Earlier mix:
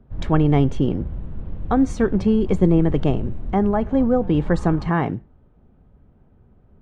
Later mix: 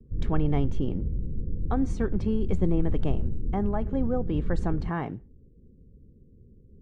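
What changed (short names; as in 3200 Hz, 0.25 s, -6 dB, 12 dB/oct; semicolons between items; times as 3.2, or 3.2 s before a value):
speech -10.0 dB; background: add steep low-pass 520 Hz 96 dB/oct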